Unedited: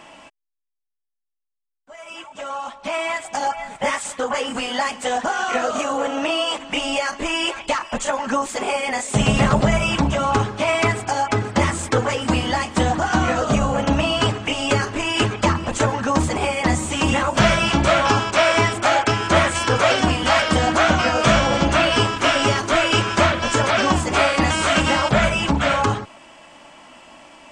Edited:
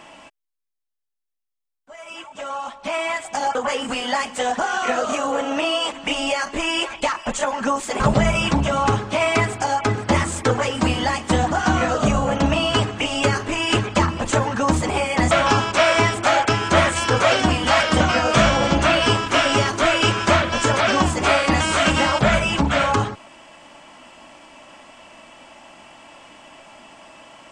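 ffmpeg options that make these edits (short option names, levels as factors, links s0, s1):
-filter_complex "[0:a]asplit=5[s0][s1][s2][s3][s4];[s0]atrim=end=3.552[s5];[s1]atrim=start=4.208:end=8.662[s6];[s2]atrim=start=9.468:end=16.782[s7];[s3]atrim=start=17.898:end=20.592[s8];[s4]atrim=start=20.898[s9];[s5][s6]acrossfade=d=0.004:c1=hsin:c2=hsin[s10];[s10][s7]acrossfade=d=0.004:c1=hsin:c2=hsin[s11];[s11][s8]acrossfade=d=0.004:c1=hsin:c2=hsin[s12];[s12][s9]acrossfade=d=0.004:c1=hsin:c2=hsin"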